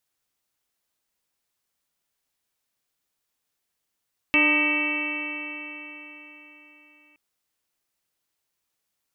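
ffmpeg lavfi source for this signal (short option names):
-f lavfi -i "aevalsrc='0.0708*pow(10,-3*t/4.09)*sin(2*PI*297.56*t)+0.0282*pow(10,-3*t/4.09)*sin(2*PI*598.5*t)+0.0251*pow(10,-3*t/4.09)*sin(2*PI*906.11*t)+0.0266*pow(10,-3*t/4.09)*sin(2*PI*1223.58*t)+0.00841*pow(10,-3*t/4.09)*sin(2*PI*1553.94*t)+0.0335*pow(10,-3*t/4.09)*sin(2*PI*1899.98*t)+0.0841*pow(10,-3*t/4.09)*sin(2*PI*2264.3*t)+0.133*pow(10,-3*t/4.09)*sin(2*PI*2649.21*t)+0.0188*pow(10,-3*t/4.09)*sin(2*PI*3056.82*t)':d=2.82:s=44100"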